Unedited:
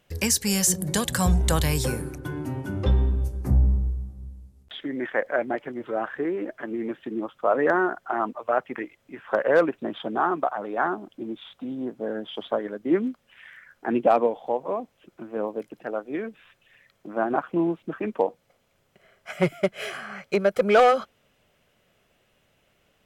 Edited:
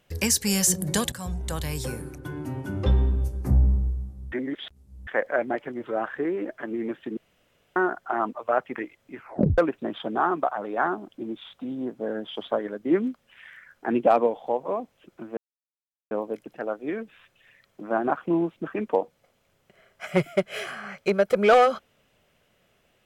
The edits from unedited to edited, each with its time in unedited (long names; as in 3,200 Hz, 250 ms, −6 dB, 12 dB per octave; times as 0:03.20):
0:01.12–0:02.91: fade in, from −14.5 dB
0:04.32–0:05.07: reverse
0:07.17–0:07.76: fill with room tone
0:09.17: tape stop 0.41 s
0:15.37: splice in silence 0.74 s